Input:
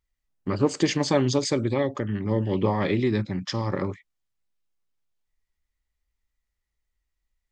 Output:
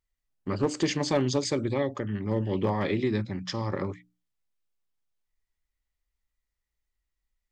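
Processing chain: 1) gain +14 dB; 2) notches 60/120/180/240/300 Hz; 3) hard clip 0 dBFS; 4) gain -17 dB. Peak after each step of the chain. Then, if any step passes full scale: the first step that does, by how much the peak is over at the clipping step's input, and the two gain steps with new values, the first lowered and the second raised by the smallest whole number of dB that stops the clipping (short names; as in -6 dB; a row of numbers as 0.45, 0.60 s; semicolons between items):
+5.0, +5.0, 0.0, -17.0 dBFS; step 1, 5.0 dB; step 1 +9 dB, step 4 -12 dB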